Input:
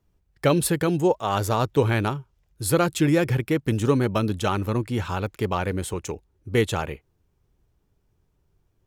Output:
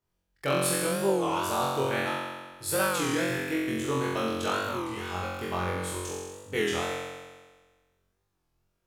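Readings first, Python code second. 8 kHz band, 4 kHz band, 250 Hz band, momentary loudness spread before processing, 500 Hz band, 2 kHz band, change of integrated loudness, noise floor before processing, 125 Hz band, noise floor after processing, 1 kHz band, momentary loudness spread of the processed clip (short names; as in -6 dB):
-0.5 dB, -0.5 dB, -7.5 dB, 10 LU, -5.0 dB, -0.5 dB, -5.5 dB, -69 dBFS, -12.5 dB, -77 dBFS, -2.5 dB, 9 LU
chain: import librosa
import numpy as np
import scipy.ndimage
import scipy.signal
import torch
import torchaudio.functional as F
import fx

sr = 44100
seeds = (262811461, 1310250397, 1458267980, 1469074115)

y = fx.low_shelf(x, sr, hz=360.0, db=-11.5)
y = fx.room_flutter(y, sr, wall_m=3.8, rt60_s=1.4)
y = fx.record_warp(y, sr, rpm=33.33, depth_cents=160.0)
y = y * librosa.db_to_amplitude(-7.5)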